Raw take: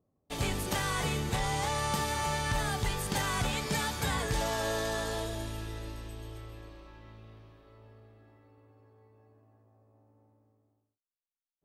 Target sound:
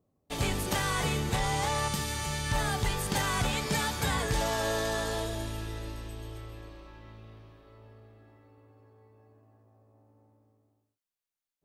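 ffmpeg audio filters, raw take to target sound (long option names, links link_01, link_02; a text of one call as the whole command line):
ffmpeg -i in.wav -filter_complex "[0:a]asettb=1/sr,asplit=3[link_01][link_02][link_03];[link_01]atrim=end=1.884[link_04];[link_02]atrim=start=1.88:end=2.52,asetpts=PTS-STARTPTS,afade=type=in:duration=0.004:curve=qsin,afade=type=out:start_time=0.636:duration=0.004:curve=qsin,equalizer=frequency=800:width=0.64:gain=-9[link_05];[link_03]atrim=start=2.516[link_06];[link_04][link_05]acrossfade=duration=0.004:curve1=hsin:curve2=qsin[link_07];[link_07][link_06]acrossfade=duration=0.004:curve1=qsin:curve2=hsin,volume=2dB" out.wav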